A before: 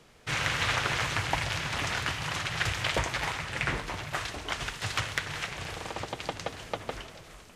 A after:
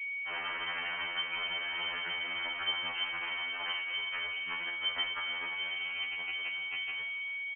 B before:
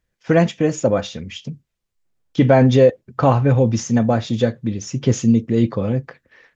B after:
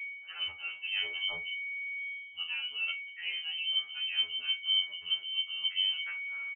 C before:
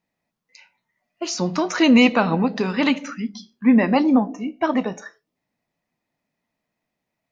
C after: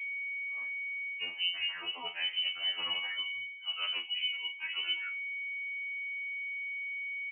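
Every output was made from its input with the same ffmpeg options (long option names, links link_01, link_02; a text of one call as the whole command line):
ffmpeg -i in.wav -af "aeval=exprs='val(0)+0.0224*sin(2*PI*960*n/s)':channel_layout=same,areverse,acompressor=threshold=-26dB:ratio=10,areverse,aecho=1:1:36|50:0.299|0.141,aeval=exprs='val(0)+0.002*(sin(2*PI*60*n/s)+sin(2*PI*2*60*n/s)/2+sin(2*PI*3*60*n/s)/3+sin(2*PI*4*60*n/s)/4+sin(2*PI*5*60*n/s)/5)':channel_layout=same,asubboost=boost=3:cutoff=180,lowpass=frequency=2700:width_type=q:width=0.5098,lowpass=frequency=2700:width_type=q:width=0.6013,lowpass=frequency=2700:width_type=q:width=0.9,lowpass=frequency=2700:width_type=q:width=2.563,afreqshift=-3200,afftfilt=real='re*2*eq(mod(b,4),0)':imag='im*2*eq(mod(b,4),0)':win_size=2048:overlap=0.75,volume=-4.5dB" out.wav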